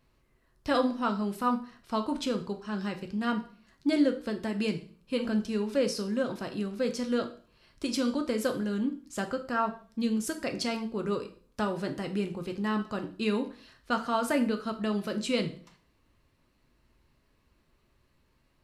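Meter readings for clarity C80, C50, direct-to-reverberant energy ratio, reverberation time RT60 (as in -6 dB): 16.5 dB, 12.5 dB, 5.0 dB, 0.45 s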